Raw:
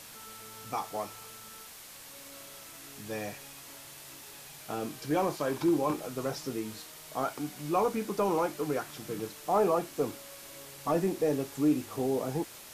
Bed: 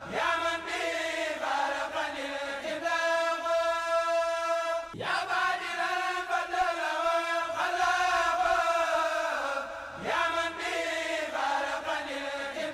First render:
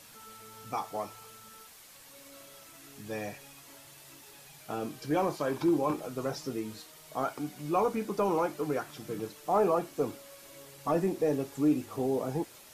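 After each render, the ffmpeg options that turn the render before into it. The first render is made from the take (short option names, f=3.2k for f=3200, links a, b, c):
-af "afftdn=nr=6:nf=-49"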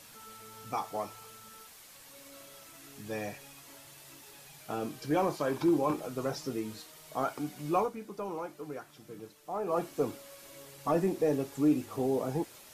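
-filter_complex "[0:a]asplit=3[a][b][c];[a]atrim=end=7.91,asetpts=PTS-STARTPTS,afade=t=out:st=7.77:d=0.14:silence=0.334965[d];[b]atrim=start=7.91:end=9.66,asetpts=PTS-STARTPTS,volume=-9.5dB[e];[c]atrim=start=9.66,asetpts=PTS-STARTPTS,afade=t=in:d=0.14:silence=0.334965[f];[d][e][f]concat=n=3:v=0:a=1"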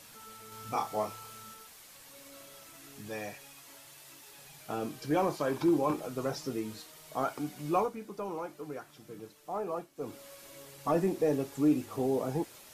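-filter_complex "[0:a]asettb=1/sr,asplit=3[a][b][c];[a]atrim=end=0.494[d];[b]atrim=start=0.49:end=1.54,asetpts=PTS-STARTPTS,afade=t=in:d=0.004:c=qsin,afade=t=out:st=1.046:d=0.004:c=qsin,asplit=2[e][f];[f]adelay=28,volume=-2dB[g];[e][g]amix=inputs=2:normalize=0,atrim=end_sample=46305[h];[c]atrim=start=1.536[i];[d][h]acrossfade=d=0.004:c1=hsin:c2=qsin[j];[j][i]acrossfade=d=0.004:c1=qsin:c2=hsin,asettb=1/sr,asplit=3[k][l][m];[k]atrim=end=3.094[n];[l]atrim=start=3.09:end=4.38,asetpts=PTS-STARTPTS,afade=t=in:d=0.004:c=qsin,afade=t=out:st=1.286:d=0.004:c=qsin,lowshelf=f=470:g=-5.5[o];[m]atrim=start=4.376[p];[n][o]acrossfade=d=0.004:c1=hsin:c2=qsin[q];[q][p]acrossfade=d=0.004:c1=qsin:c2=hsin,asplit=3[r][s][t];[r]atrim=end=9.87,asetpts=PTS-STARTPTS,afade=t=out:st=9.58:d=0.29:silence=0.177828[u];[s]atrim=start=9.87:end=9.95,asetpts=PTS-STARTPTS,volume=-15dB[v];[t]atrim=start=9.95,asetpts=PTS-STARTPTS,afade=t=in:d=0.29:silence=0.177828[w];[u][v][w]concat=n=3:v=0:a=1"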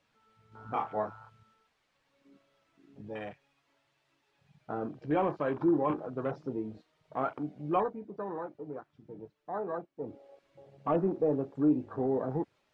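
-af "lowpass=3.1k,afwtdn=0.00708"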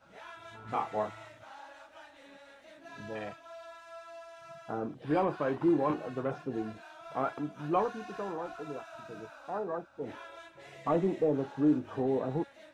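-filter_complex "[1:a]volume=-20.5dB[a];[0:a][a]amix=inputs=2:normalize=0"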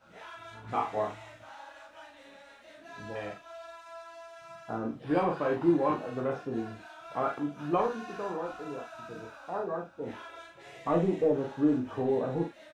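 -filter_complex "[0:a]asplit=2[a][b];[b]adelay=35,volume=-10.5dB[c];[a][c]amix=inputs=2:normalize=0,asplit=2[d][e];[e]aecho=0:1:17|48:0.531|0.501[f];[d][f]amix=inputs=2:normalize=0"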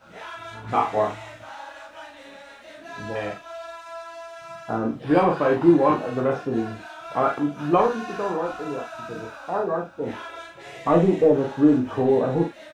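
-af "volume=9dB"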